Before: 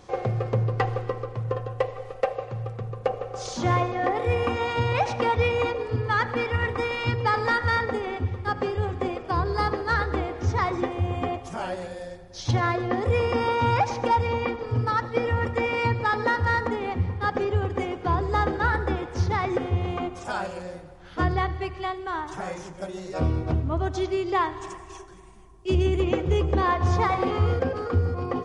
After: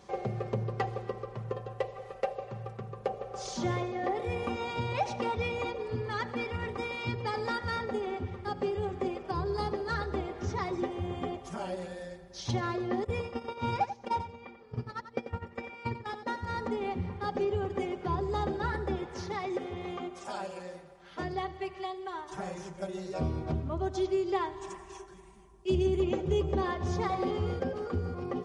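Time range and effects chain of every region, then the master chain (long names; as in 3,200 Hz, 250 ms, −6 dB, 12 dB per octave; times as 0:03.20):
0:13.04–0:16.56: noise gate −23 dBFS, range −17 dB + single-tap delay 90 ms −11 dB
0:19.15–0:22.32: low-shelf EQ 190 Hz −12 dB + notch filter 1,500 Hz, Q 21
whole clip: high-pass filter 45 Hz; dynamic equaliser 1,500 Hz, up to −7 dB, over −38 dBFS, Q 0.79; comb filter 5.1 ms, depth 53%; level −5.5 dB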